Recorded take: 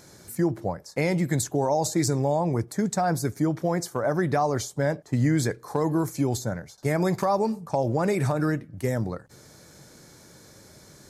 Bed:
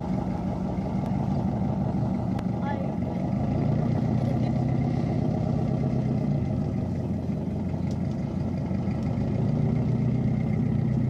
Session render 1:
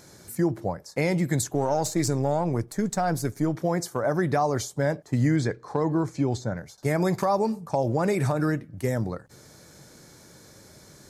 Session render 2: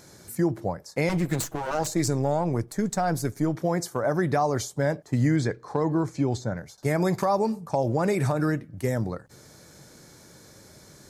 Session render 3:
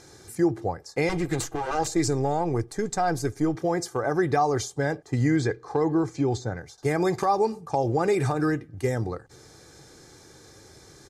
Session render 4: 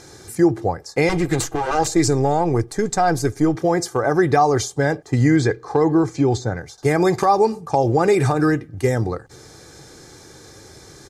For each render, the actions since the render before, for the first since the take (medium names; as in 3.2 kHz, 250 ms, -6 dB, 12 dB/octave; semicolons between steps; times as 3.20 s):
1.53–3.55 s: partial rectifier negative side -3 dB; 5.36–6.57 s: distance through air 99 m
1.09–1.87 s: comb filter that takes the minimum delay 6.2 ms
low-pass 9.2 kHz 12 dB/octave; comb 2.5 ms, depth 53%
trim +7 dB